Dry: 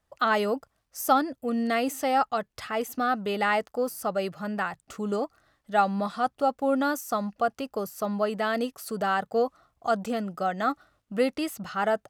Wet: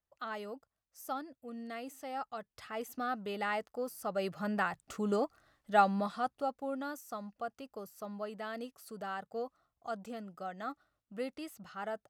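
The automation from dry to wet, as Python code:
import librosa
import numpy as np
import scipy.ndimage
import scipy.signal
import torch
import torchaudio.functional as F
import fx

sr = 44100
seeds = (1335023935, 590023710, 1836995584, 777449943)

y = fx.gain(x, sr, db=fx.line((2.05, -17.0), (2.86, -10.0), (3.98, -10.0), (4.38, -3.0), (5.82, -3.0), (6.77, -14.0)))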